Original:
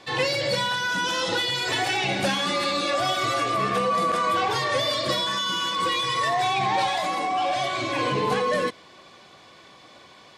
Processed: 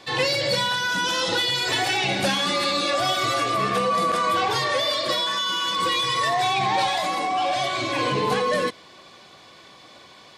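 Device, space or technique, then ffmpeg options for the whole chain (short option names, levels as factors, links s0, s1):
presence and air boost: -filter_complex "[0:a]asettb=1/sr,asplit=3[s0][s1][s2];[s0]atrim=end=4.724[s3];[s1]atrim=start=4.72:end=5.68,asetpts=PTS-STARTPTS,afade=t=in:d=0.004:c=qsin,afade=t=out:st=0.956:d=0.004:c=qsin,bass=f=250:g=-10,treble=f=4000:g=-3[s4];[s2]atrim=start=5.676[s5];[s3][s4]acrossfade=d=0.004:c1=hsin:c2=qsin[s6];[s6][s5]acrossfade=d=0.004:c1=qsin:c2=hsin,equalizer=f=4200:t=o:w=0.77:g=2.5,highshelf=f=12000:g=7,volume=1.12"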